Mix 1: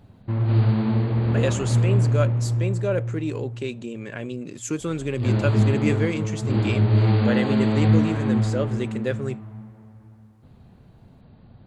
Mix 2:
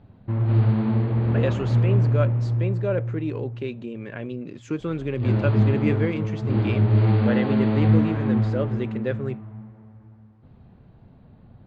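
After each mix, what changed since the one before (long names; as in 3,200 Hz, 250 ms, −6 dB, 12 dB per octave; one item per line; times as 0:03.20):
master: add high-frequency loss of the air 250 metres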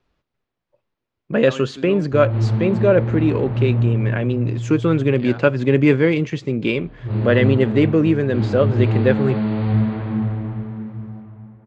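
speech +10.5 dB
background: entry +1.85 s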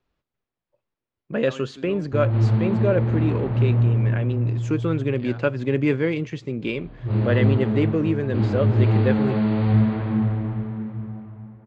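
speech −6.5 dB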